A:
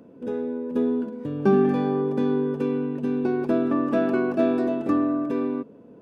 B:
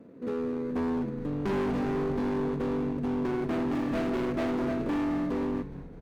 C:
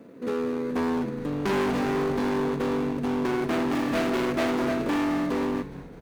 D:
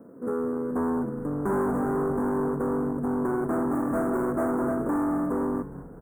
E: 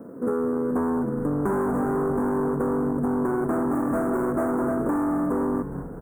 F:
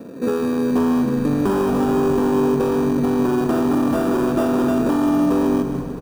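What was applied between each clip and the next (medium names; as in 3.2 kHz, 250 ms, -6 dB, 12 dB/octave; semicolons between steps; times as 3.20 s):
median filter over 41 samples; frequency-shifting echo 208 ms, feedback 56%, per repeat -110 Hz, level -14.5 dB; overload inside the chain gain 25 dB; trim -1.5 dB
tilt EQ +2 dB/octave; trim +6.5 dB
elliptic band-stop 1.4–8.5 kHz, stop band 80 dB
compression 6:1, threshold -29 dBFS, peak gain reduction 6.5 dB; trim +7.5 dB
in parallel at -9.5 dB: sample-rate reducer 2.1 kHz, jitter 0%; on the sum: feedback delay 153 ms, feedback 55%, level -10 dB; trim +2.5 dB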